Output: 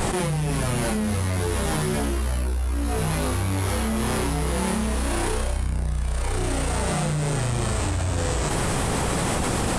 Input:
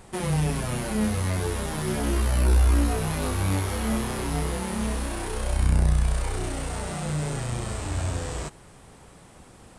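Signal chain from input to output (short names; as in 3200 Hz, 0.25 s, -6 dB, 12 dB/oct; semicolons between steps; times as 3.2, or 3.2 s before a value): fast leveller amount 100%; gain -7.5 dB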